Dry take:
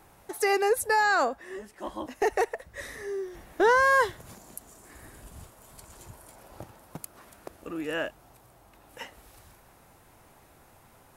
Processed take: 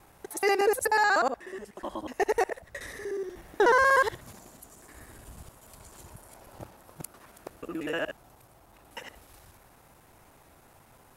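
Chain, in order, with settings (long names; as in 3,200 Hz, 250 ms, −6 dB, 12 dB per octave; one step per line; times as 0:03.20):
reversed piece by piece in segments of 61 ms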